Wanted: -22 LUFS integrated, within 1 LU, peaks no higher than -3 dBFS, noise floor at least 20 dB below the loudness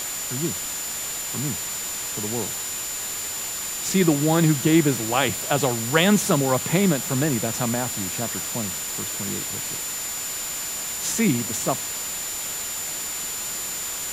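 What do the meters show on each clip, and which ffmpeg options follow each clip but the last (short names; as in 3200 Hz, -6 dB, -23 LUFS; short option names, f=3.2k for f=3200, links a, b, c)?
steady tone 7100 Hz; tone level -30 dBFS; noise floor -30 dBFS; noise floor target -44 dBFS; loudness -23.5 LUFS; peak -4.0 dBFS; loudness target -22.0 LUFS
-> -af "bandreject=f=7.1k:w=30"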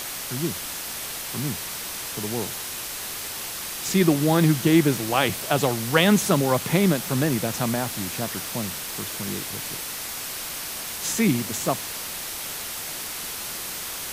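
steady tone none; noise floor -33 dBFS; noise floor target -45 dBFS
-> -af "afftdn=nr=12:nf=-33"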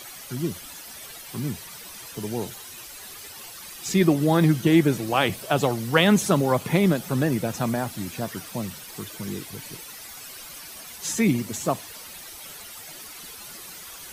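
noise floor -41 dBFS; noise floor target -44 dBFS
-> -af "afftdn=nr=6:nf=-41"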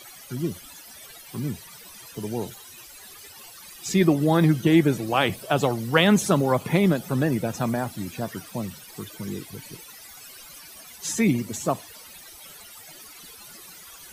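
noise floor -46 dBFS; loudness -24.0 LUFS; peak -3.5 dBFS; loudness target -22.0 LUFS
-> -af "volume=2dB,alimiter=limit=-3dB:level=0:latency=1"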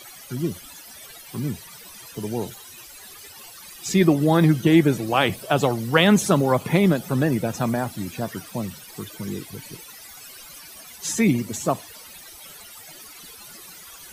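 loudness -22.0 LUFS; peak -3.0 dBFS; noise floor -44 dBFS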